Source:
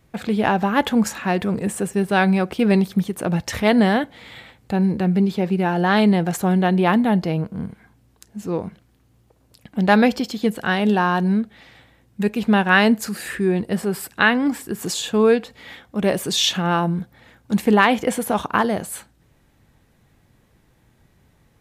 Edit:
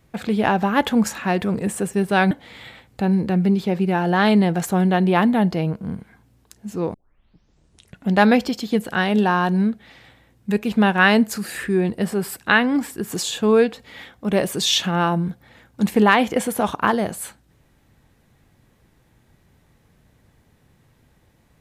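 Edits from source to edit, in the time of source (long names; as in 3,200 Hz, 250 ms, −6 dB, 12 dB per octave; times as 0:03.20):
0:02.31–0:04.02: remove
0:08.65: tape start 1.17 s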